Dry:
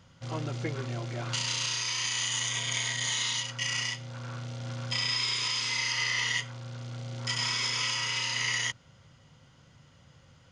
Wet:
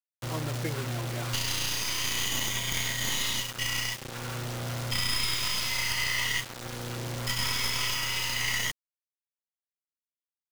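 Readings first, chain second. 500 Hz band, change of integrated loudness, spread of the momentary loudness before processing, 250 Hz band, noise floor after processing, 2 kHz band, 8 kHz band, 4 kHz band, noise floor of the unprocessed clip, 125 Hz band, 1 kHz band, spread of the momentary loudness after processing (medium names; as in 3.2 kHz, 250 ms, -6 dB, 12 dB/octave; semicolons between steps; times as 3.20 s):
+3.0 dB, +0.5 dB, 12 LU, +3.0 dB, under -85 dBFS, +0.5 dB, +0.5 dB, 0.0 dB, -59 dBFS, +1.5 dB, +2.0 dB, 8 LU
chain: tracing distortion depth 0.071 ms; bass shelf 60 Hz +7.5 dB; bit crusher 6-bit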